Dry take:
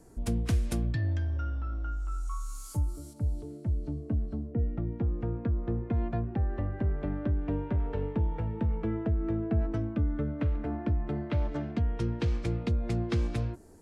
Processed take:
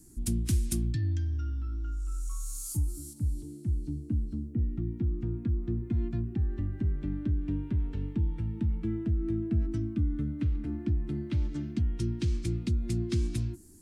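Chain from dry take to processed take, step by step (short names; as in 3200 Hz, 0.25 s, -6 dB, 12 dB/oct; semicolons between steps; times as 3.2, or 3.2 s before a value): EQ curve 350 Hz 0 dB, 490 Hz -22 dB, 9000 Hz +10 dB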